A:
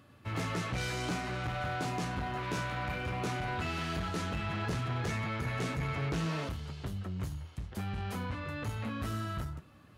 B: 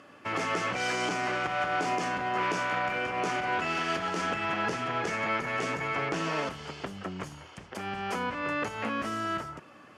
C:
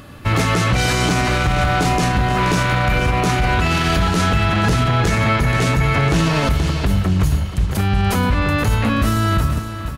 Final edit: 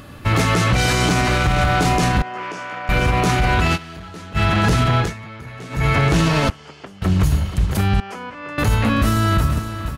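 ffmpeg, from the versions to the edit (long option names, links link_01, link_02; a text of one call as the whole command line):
ffmpeg -i take0.wav -i take1.wav -i take2.wav -filter_complex "[1:a]asplit=3[link_01][link_02][link_03];[0:a]asplit=2[link_04][link_05];[2:a]asplit=6[link_06][link_07][link_08][link_09][link_10][link_11];[link_06]atrim=end=2.222[link_12];[link_01]atrim=start=2.218:end=2.892[link_13];[link_07]atrim=start=2.888:end=3.78[link_14];[link_04]atrim=start=3.74:end=4.38[link_15];[link_08]atrim=start=4.34:end=5.14[link_16];[link_05]atrim=start=4.98:end=5.86[link_17];[link_09]atrim=start=5.7:end=6.502[link_18];[link_02]atrim=start=6.498:end=7.022[link_19];[link_10]atrim=start=7.018:end=8.002[link_20];[link_03]atrim=start=7.998:end=8.582[link_21];[link_11]atrim=start=8.578[link_22];[link_12][link_13]acrossfade=duration=0.004:curve1=hsin:curve2=hsin[link_23];[link_23][link_14]acrossfade=duration=0.004:curve1=hsin:curve2=hsin[link_24];[link_24][link_15]acrossfade=duration=0.04:curve1=tri:curve2=tri[link_25];[link_25][link_16]acrossfade=duration=0.04:curve1=tri:curve2=tri[link_26];[link_26][link_17]acrossfade=duration=0.16:curve1=tri:curve2=tri[link_27];[link_27][link_18]acrossfade=duration=0.16:curve1=tri:curve2=tri[link_28];[link_28][link_19]acrossfade=duration=0.004:curve1=hsin:curve2=hsin[link_29];[link_29][link_20]acrossfade=duration=0.004:curve1=hsin:curve2=hsin[link_30];[link_30][link_21]acrossfade=duration=0.004:curve1=hsin:curve2=hsin[link_31];[link_31][link_22]acrossfade=duration=0.004:curve1=hsin:curve2=hsin" out.wav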